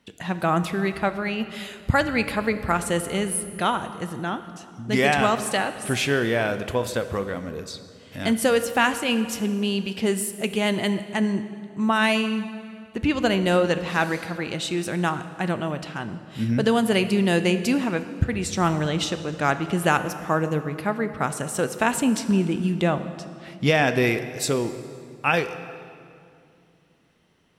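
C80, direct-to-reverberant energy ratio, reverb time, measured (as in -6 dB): 12.5 dB, 10.5 dB, 2.5 s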